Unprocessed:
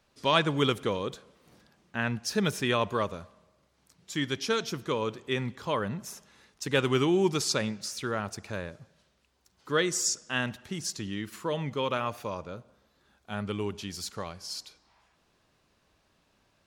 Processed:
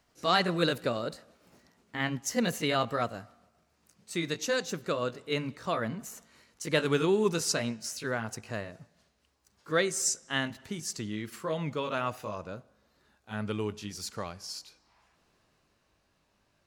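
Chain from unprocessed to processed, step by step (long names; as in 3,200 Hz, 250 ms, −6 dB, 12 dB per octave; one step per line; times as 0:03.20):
pitch glide at a constant tempo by +3 semitones ending unshifted
parametric band 3,400 Hz −4 dB 0.2 octaves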